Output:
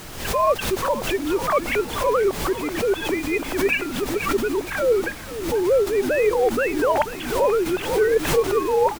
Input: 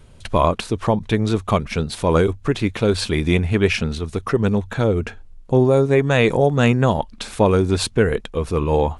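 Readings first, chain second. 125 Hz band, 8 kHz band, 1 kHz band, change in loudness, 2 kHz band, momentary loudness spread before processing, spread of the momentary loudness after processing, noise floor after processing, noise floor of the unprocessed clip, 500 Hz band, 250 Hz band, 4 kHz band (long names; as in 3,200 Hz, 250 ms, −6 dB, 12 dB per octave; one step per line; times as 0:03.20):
−17.0 dB, +1.5 dB, +0.5 dB, −2.5 dB, 0.0 dB, 8 LU, 5 LU, −33 dBFS, −43 dBFS, −0.5 dB, −6.5 dB, −3.0 dB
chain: three sine waves on the formant tracks
parametric band 250 Hz +9.5 dB 0.4 octaves
reversed playback
downward compressor 12 to 1, threshold −21 dBFS, peak gain reduction 15 dB
reversed playback
low shelf with overshoot 320 Hz −13 dB, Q 1.5
background noise pink −41 dBFS
echo with shifted repeats 483 ms, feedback 48%, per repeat −55 Hz, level −13.5 dB
background raised ahead of every attack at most 73 dB per second
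level +3.5 dB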